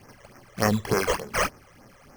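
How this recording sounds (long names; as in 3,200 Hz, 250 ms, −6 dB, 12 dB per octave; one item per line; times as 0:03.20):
aliases and images of a low sample rate 3,700 Hz, jitter 0%
phaser sweep stages 12, 3.4 Hz, lowest notch 240–3,800 Hz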